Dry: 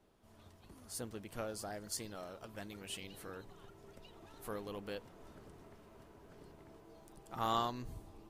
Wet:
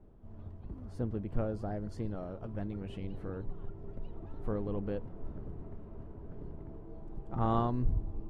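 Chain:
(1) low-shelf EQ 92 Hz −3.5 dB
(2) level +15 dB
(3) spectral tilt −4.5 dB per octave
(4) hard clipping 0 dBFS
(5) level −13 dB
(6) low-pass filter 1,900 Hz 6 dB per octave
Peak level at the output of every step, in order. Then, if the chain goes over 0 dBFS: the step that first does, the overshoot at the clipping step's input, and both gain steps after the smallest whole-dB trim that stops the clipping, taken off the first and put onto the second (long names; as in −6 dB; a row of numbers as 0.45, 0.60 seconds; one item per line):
−20.5, −5.5, −1.5, −1.5, −14.5, −15.0 dBFS
no step passes full scale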